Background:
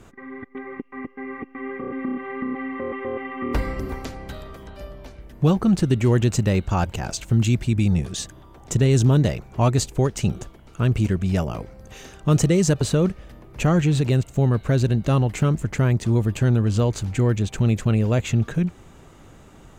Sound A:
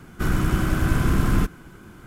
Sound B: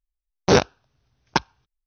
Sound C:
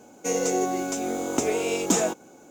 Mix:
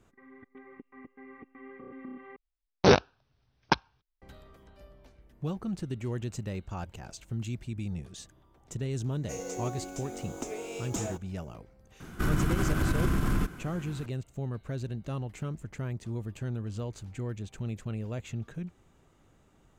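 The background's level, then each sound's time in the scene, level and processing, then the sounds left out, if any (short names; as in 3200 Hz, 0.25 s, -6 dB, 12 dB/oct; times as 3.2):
background -16 dB
2.36 replace with B -3.5 dB + LPF 5300 Hz 24 dB/oct
9.04 add C -13 dB
12 add A -1 dB + compressor, threshold -21 dBFS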